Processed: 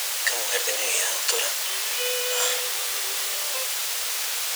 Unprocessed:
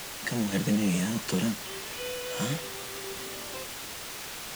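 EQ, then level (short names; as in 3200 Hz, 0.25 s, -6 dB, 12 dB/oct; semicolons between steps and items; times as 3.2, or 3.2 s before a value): elliptic high-pass 470 Hz, stop band 60 dB; high shelf 2200 Hz +10.5 dB; +5.0 dB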